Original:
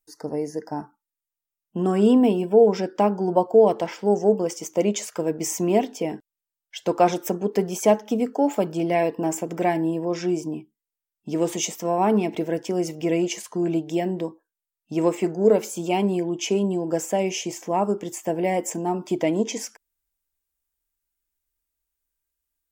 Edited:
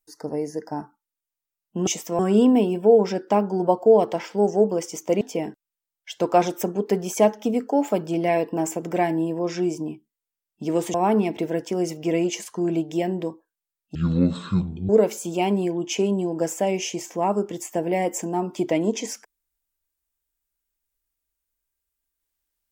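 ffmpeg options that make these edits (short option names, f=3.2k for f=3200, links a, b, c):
-filter_complex "[0:a]asplit=7[a][b][c][d][e][f][g];[a]atrim=end=1.872[h];[b]atrim=start=11.598:end=11.922[i];[c]atrim=start=1.868:end=4.892[j];[d]atrim=start=5.868:end=11.602[k];[e]atrim=start=11.918:end=14.934[l];[f]atrim=start=14.93:end=15.41,asetpts=PTS-STARTPTS,asetrate=22491,aresample=44100[m];[g]atrim=start=15.406[n];[h][i]acrossfade=d=0.004:c1=hsin:c2=hsin[o];[o][j]acrossfade=d=0.004:c1=hsin:c2=hsin[p];[p][k]acrossfade=d=0.004:c1=hsin:c2=hsin[q];[q][l]acrossfade=d=0.004:c1=hsin:c2=hsin[r];[r][m]acrossfade=d=0.004:c1=hsin:c2=hsin[s];[s][n]acrossfade=d=0.004:c1=hsin:c2=hsin"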